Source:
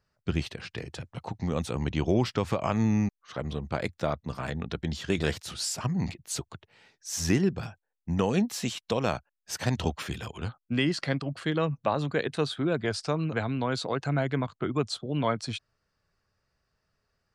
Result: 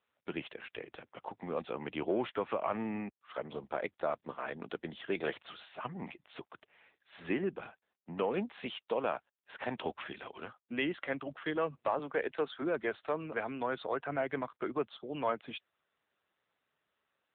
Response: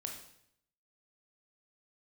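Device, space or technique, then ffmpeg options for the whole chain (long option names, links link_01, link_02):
telephone: -filter_complex "[0:a]asettb=1/sr,asplit=3[link_01][link_02][link_03];[link_01]atrim=end=11.994[link_04];[link_02]atrim=start=11.99:end=12.62,asetpts=PTS-STARTPTS,afade=type=in:duration=0.004:curve=qsin,afade=type=out:start_time=0.626:duration=0.004:curve=qsin,acrossover=split=150 4300:gain=0.178 1 0.141[link_05][link_06][link_07];[link_05][link_06][link_07]amix=inputs=3:normalize=0[link_08];[link_03]atrim=start=12.616[link_09];[link_04][link_08]acrossfade=duration=0.004:curve1=hsin:curve2=qsin[link_10];[link_10][link_09]acrossfade=duration=0.004:curve1=qsin:curve2=hsin,highpass=370,lowpass=3300,asoftclip=type=tanh:threshold=-18.5dB,volume=-1.5dB" -ar 8000 -c:a libopencore_amrnb -b:a 7950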